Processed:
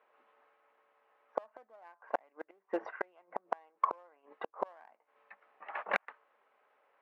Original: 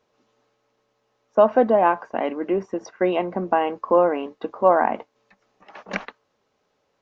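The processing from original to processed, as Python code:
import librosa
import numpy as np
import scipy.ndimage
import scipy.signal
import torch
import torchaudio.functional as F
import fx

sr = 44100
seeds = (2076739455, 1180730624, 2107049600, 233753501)

p1 = fx.tracing_dist(x, sr, depth_ms=0.095)
p2 = scipy.signal.sosfilt(scipy.signal.butter(4, 2300.0, 'lowpass', fs=sr, output='sos'), p1)
p3 = fx.clip_asym(p2, sr, top_db=-21.0, bottom_db=-10.0)
p4 = p2 + (p3 * 10.0 ** (-4.5 / 20.0))
p5 = fx.gate_flip(p4, sr, shuts_db=-13.0, range_db=-38)
y = scipy.signal.sosfilt(scipy.signal.butter(2, 750.0, 'highpass', fs=sr, output='sos'), p5)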